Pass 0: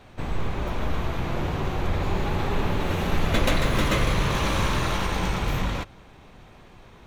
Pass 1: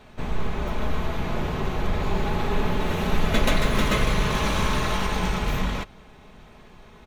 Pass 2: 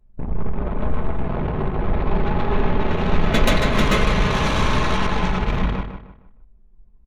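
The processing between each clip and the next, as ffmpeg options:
-af "aecho=1:1:4.7:0.38"
-filter_complex "[0:a]anlmdn=100,asplit=2[a][b];[b]adelay=154,lowpass=f=2.9k:p=1,volume=-8dB,asplit=2[c][d];[d]adelay=154,lowpass=f=2.9k:p=1,volume=0.34,asplit=2[e][f];[f]adelay=154,lowpass=f=2.9k:p=1,volume=0.34,asplit=2[g][h];[h]adelay=154,lowpass=f=2.9k:p=1,volume=0.34[i];[a][c][e][g][i]amix=inputs=5:normalize=0,volume=4dB"

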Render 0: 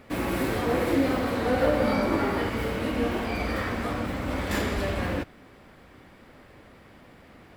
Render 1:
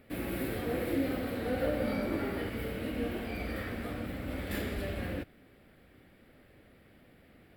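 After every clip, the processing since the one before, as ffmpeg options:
-af "equalizer=f=1k:t=o:w=0.67:g=-11,equalizer=f=6.3k:t=o:w=0.67:g=-11,equalizer=f=16k:t=o:w=0.67:g=9,volume=-7dB"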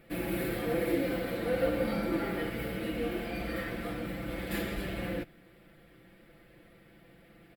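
-af "aecho=1:1:5.9:0.8"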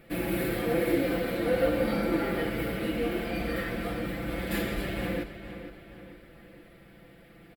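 -filter_complex "[0:a]asplit=2[a][b];[b]adelay=464,lowpass=f=4.5k:p=1,volume=-11dB,asplit=2[c][d];[d]adelay=464,lowpass=f=4.5k:p=1,volume=0.49,asplit=2[e][f];[f]adelay=464,lowpass=f=4.5k:p=1,volume=0.49,asplit=2[g][h];[h]adelay=464,lowpass=f=4.5k:p=1,volume=0.49,asplit=2[i][j];[j]adelay=464,lowpass=f=4.5k:p=1,volume=0.49[k];[a][c][e][g][i][k]amix=inputs=6:normalize=0,volume=3.5dB"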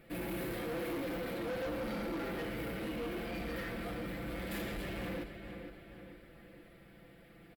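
-af "asoftclip=type=tanh:threshold=-30.5dB,volume=-4.5dB"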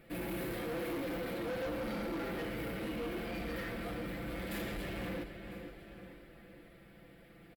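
-af "aecho=1:1:1000:0.106"

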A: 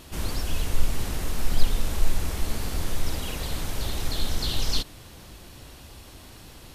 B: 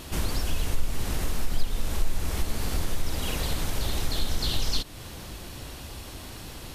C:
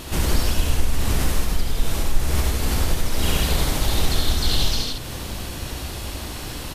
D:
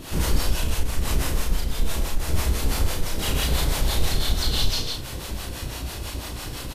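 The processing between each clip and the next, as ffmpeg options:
-af "acompressor=threshold=-31dB:ratio=2,volume=5.5dB"
-filter_complex "[0:a]alimiter=limit=-18.5dB:level=0:latency=1:release=84,asplit=2[a][b];[b]aecho=0:1:70|101|155:0.708|0.631|0.596[c];[a][c]amix=inputs=2:normalize=0,volume=5.5dB"
-filter_complex "[0:a]acrossover=split=500[a][b];[a]aeval=exprs='val(0)*(1-0.7/2+0.7/2*cos(2*PI*6*n/s))':c=same[c];[b]aeval=exprs='val(0)*(1-0.7/2-0.7/2*cos(2*PI*6*n/s))':c=same[d];[c][d]amix=inputs=2:normalize=0,asoftclip=type=tanh:threshold=-9.5dB,asplit=2[e][f];[f]adelay=33,volume=-4dB[g];[e][g]amix=inputs=2:normalize=0"

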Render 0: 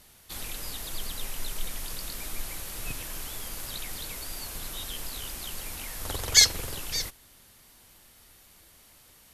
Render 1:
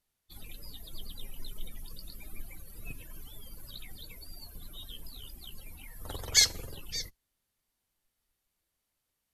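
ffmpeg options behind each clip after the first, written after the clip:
-af "afftdn=nr=22:nf=-39,volume=-5dB"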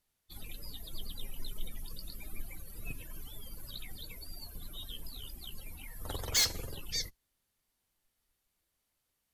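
-af "volume=25dB,asoftclip=hard,volume=-25dB,volume=1dB"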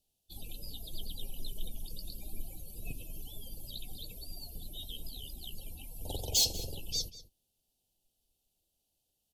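-filter_complex "[0:a]asuperstop=centerf=1500:order=12:qfactor=0.83,asplit=2[a][b];[b]adelay=192.4,volume=-15dB,highshelf=f=4k:g=-4.33[c];[a][c]amix=inputs=2:normalize=0,volume=1dB"

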